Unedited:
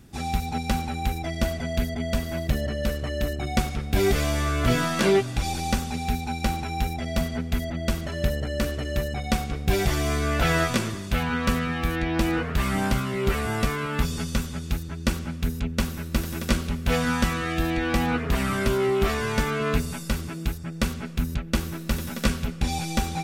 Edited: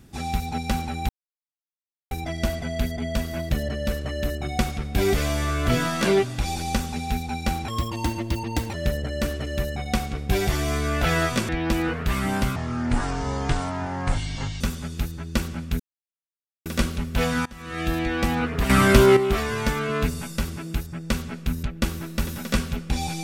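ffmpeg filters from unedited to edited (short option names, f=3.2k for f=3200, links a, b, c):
-filter_complex "[0:a]asplit=12[a][b][c][d][e][f][g][h][i][j][k][l];[a]atrim=end=1.09,asetpts=PTS-STARTPTS,afade=t=out:st=1.086:d=0.004:c=hsin,apad=pad_dur=1.02[m];[b]atrim=start=1.09:end=6.664,asetpts=PTS-STARTPTS,afade=t=in:d=0.004:c=hsin[n];[c]atrim=start=6.66:end=8.12,asetpts=PTS-STARTPTS,asetrate=60858,aresample=44100[o];[d]atrim=start=8.116:end=10.872[p];[e]atrim=start=11.978:end=13.054[q];[f]atrim=start=13.05:end=14.32,asetpts=PTS-STARTPTS,asetrate=27342,aresample=44100[r];[g]atrim=start=14.316:end=15.51,asetpts=PTS-STARTPTS,afade=t=out:st=1.19:d=0.004:c=hsin[s];[h]atrim=start=15.51:end=16.37,asetpts=PTS-STARTPTS,volume=0[t];[i]atrim=start=16.37:end=17.17,asetpts=PTS-STARTPTS,afade=t=in:d=0.004:c=hsin,afade=t=out:st=0.796:d=0.004:c=hsin:silence=0.0630957[u];[j]atrim=start=17.17:end=18.412,asetpts=PTS-STARTPTS,afade=t=in:d=0.36:c=qua:silence=0.0630957[v];[k]atrim=start=18.408:end=18.882,asetpts=PTS-STARTPTS,volume=9dB[w];[l]atrim=start=18.878[x];[m][n]concat=n=2:v=0:a=1[y];[y][o]acrossfade=d=0.004:c1=hsin:c2=hsin[z];[z][p]acrossfade=d=0.004:c1=hsin:c2=hsin[aa];[aa][q]acrossfade=d=0.004:c1=hsin:c2=hsin[ab];[ab][r]acrossfade=d=0.004:c1=hsin:c2=hsin[ac];[s][t][u][v]concat=n=4:v=0:a=1[ad];[ac][ad]acrossfade=d=0.004:c1=hsin:c2=hsin[ae];[ae][w]acrossfade=d=0.004:c1=hsin:c2=hsin[af];[af][x]acrossfade=d=0.004:c1=hsin:c2=hsin"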